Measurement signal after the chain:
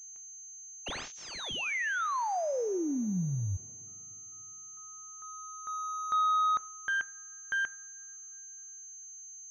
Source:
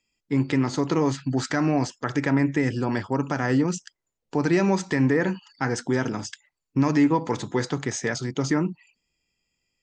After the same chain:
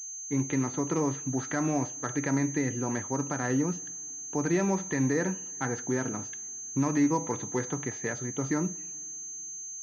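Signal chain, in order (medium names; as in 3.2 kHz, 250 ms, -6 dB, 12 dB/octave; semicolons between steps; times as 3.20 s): two-slope reverb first 0.52 s, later 3.7 s, from -18 dB, DRR 15 dB; class-D stage that switches slowly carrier 6.3 kHz; trim -6 dB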